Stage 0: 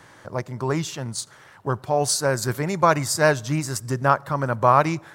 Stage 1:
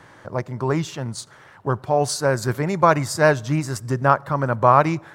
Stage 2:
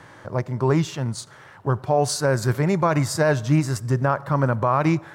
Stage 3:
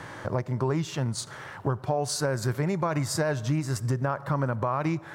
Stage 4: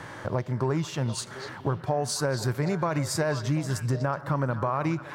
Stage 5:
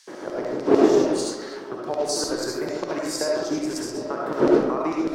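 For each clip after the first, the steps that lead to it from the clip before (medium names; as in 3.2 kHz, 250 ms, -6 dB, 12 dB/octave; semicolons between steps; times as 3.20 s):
treble shelf 3.8 kHz -8.5 dB; trim +2.5 dB
harmonic-percussive split harmonic +5 dB; peak limiter -8 dBFS, peak gain reduction 9.5 dB; trim -1.5 dB
compression 4:1, threshold -31 dBFS, peak gain reduction 14.5 dB; trim +5 dB
repeats whose band climbs or falls 246 ms, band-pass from 3.6 kHz, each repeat -1.4 oct, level -6.5 dB
wind noise 340 Hz -25 dBFS; LFO high-pass square 6.7 Hz 350–5100 Hz; reverberation RT60 0.90 s, pre-delay 30 ms, DRR -3 dB; trim -3 dB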